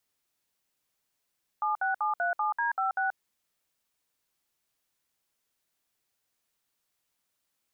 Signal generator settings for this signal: DTMF "76737D56", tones 132 ms, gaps 61 ms, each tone -28 dBFS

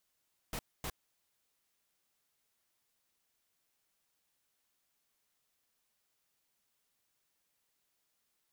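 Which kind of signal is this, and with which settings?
noise bursts pink, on 0.06 s, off 0.25 s, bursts 2, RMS -39 dBFS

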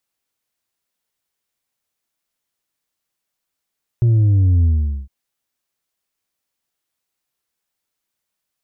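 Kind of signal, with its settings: sub drop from 120 Hz, over 1.06 s, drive 3.5 dB, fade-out 0.44 s, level -11 dB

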